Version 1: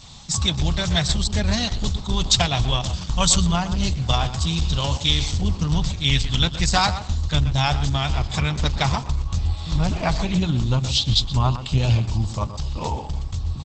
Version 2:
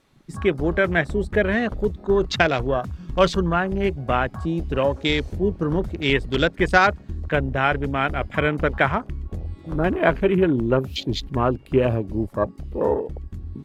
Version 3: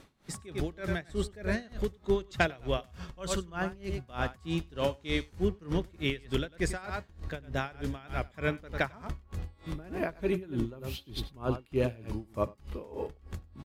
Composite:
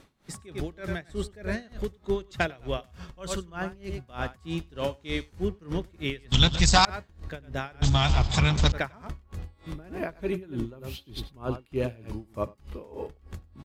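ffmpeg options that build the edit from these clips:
-filter_complex "[0:a]asplit=2[a][b];[2:a]asplit=3[c][d][e];[c]atrim=end=6.322[f];[a]atrim=start=6.318:end=6.852[g];[d]atrim=start=6.848:end=7.822[h];[b]atrim=start=7.818:end=8.722[i];[e]atrim=start=8.718[j];[f][g]acrossfade=d=0.004:c1=hsin:c2=hsin[k];[k][h]acrossfade=d=0.004:c1=hsin:c2=hsin[l];[l][i]acrossfade=d=0.004:c1=hsin:c2=hsin[m];[m][j]acrossfade=d=0.004:c1=hsin:c2=hsin"

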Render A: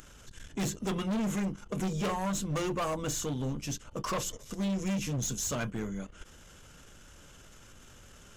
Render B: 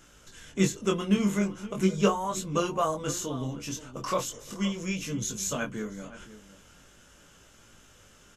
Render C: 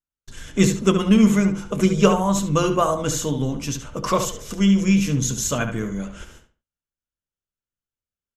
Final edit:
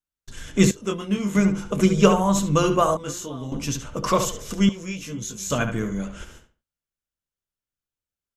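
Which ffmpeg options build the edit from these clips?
-filter_complex "[1:a]asplit=3[a][b][c];[2:a]asplit=4[d][e][f][g];[d]atrim=end=0.712[h];[a]atrim=start=0.708:end=1.352[i];[e]atrim=start=1.348:end=2.972[j];[b]atrim=start=2.968:end=3.522[k];[f]atrim=start=3.518:end=4.692[l];[c]atrim=start=4.688:end=5.502[m];[g]atrim=start=5.498[n];[h][i]acrossfade=d=0.004:c1=hsin:c2=hsin[o];[o][j]acrossfade=d=0.004:c1=hsin:c2=hsin[p];[p][k]acrossfade=d=0.004:c1=hsin:c2=hsin[q];[q][l]acrossfade=d=0.004:c1=hsin:c2=hsin[r];[r][m]acrossfade=d=0.004:c1=hsin:c2=hsin[s];[s][n]acrossfade=d=0.004:c1=hsin:c2=hsin"

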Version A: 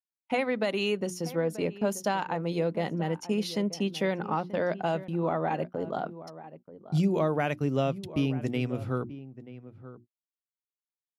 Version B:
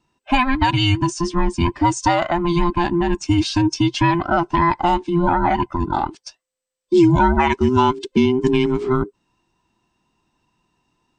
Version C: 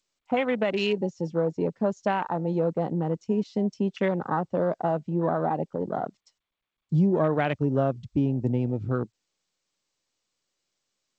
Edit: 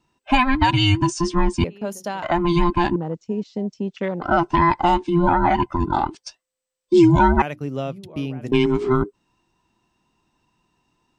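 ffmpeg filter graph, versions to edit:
-filter_complex "[0:a]asplit=2[a][b];[1:a]asplit=4[c][d][e][f];[c]atrim=end=1.642[g];[a]atrim=start=1.638:end=2.232[h];[d]atrim=start=2.228:end=2.962[i];[2:a]atrim=start=2.958:end=4.222[j];[e]atrim=start=4.218:end=7.422[k];[b]atrim=start=7.418:end=8.522[l];[f]atrim=start=8.518[m];[g][h]acrossfade=d=0.004:c1=hsin:c2=hsin[n];[n][i]acrossfade=d=0.004:c1=hsin:c2=hsin[o];[o][j]acrossfade=d=0.004:c1=hsin:c2=hsin[p];[p][k]acrossfade=d=0.004:c1=hsin:c2=hsin[q];[q][l]acrossfade=d=0.004:c1=hsin:c2=hsin[r];[r][m]acrossfade=d=0.004:c1=hsin:c2=hsin"

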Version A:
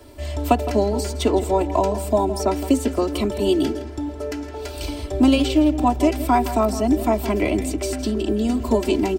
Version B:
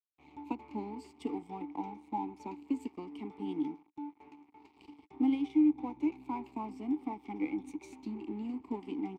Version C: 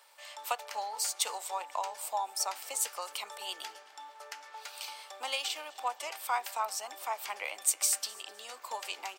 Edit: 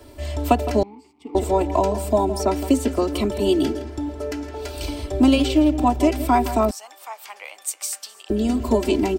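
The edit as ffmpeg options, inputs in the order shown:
-filter_complex "[0:a]asplit=3[a][b][c];[a]atrim=end=0.832[d];[1:a]atrim=start=0.828:end=1.352[e];[b]atrim=start=1.348:end=6.712[f];[2:a]atrim=start=6.708:end=8.302[g];[c]atrim=start=8.298[h];[d][e]acrossfade=d=0.004:c1=hsin:c2=hsin[i];[i][f]acrossfade=d=0.004:c1=hsin:c2=hsin[j];[j][g]acrossfade=d=0.004:c1=hsin:c2=hsin[k];[k][h]acrossfade=d=0.004:c1=hsin:c2=hsin"

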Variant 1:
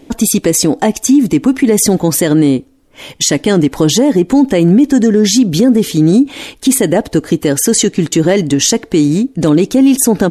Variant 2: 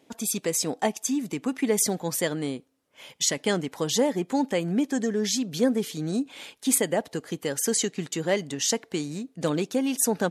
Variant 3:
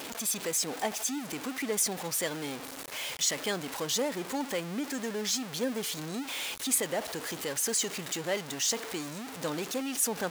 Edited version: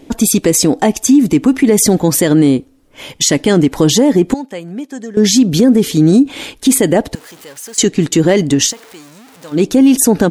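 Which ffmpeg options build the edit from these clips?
-filter_complex "[2:a]asplit=2[a][b];[0:a]asplit=4[c][d][e][f];[c]atrim=end=4.342[g];[1:a]atrim=start=4.338:end=5.172[h];[d]atrim=start=5.168:end=7.152[i];[a]atrim=start=7.148:end=7.782[j];[e]atrim=start=7.778:end=8.74[k];[b]atrim=start=8.64:end=9.61[l];[f]atrim=start=9.51[m];[g][h]acrossfade=d=0.004:c1=hsin:c2=hsin[n];[n][i]acrossfade=d=0.004:c1=hsin:c2=hsin[o];[o][j]acrossfade=d=0.004:c1=hsin:c2=hsin[p];[p][k]acrossfade=d=0.004:c1=hsin:c2=hsin[q];[q][l]acrossfade=d=0.1:c1=tri:c2=tri[r];[r][m]acrossfade=d=0.1:c1=tri:c2=tri"

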